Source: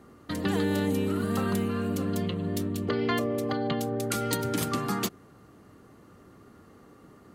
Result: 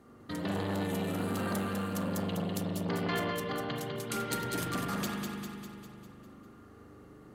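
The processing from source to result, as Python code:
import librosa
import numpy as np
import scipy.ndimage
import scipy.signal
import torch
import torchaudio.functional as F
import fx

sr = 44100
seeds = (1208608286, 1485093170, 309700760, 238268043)

y = fx.high_shelf(x, sr, hz=3900.0, db=6.5, at=(0.81, 3.4))
y = fx.echo_feedback(y, sr, ms=200, feedback_pct=56, wet_db=-6.0)
y = fx.rev_spring(y, sr, rt60_s=1.2, pass_ms=(40,), chirp_ms=55, drr_db=0.0)
y = fx.transformer_sat(y, sr, knee_hz=840.0)
y = y * librosa.db_to_amplitude(-5.5)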